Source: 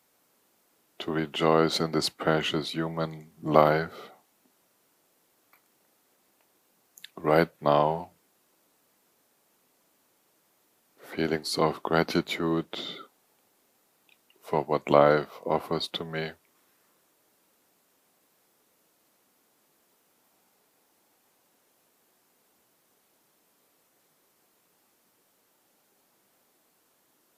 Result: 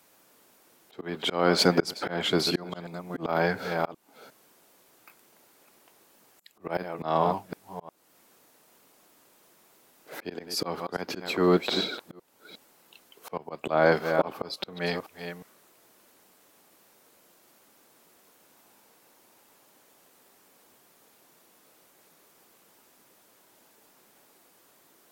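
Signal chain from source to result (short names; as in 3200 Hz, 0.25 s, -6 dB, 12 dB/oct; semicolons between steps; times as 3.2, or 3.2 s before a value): reverse delay 0.391 s, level -13 dB; auto swell 0.425 s; varispeed +9%; gain +7.5 dB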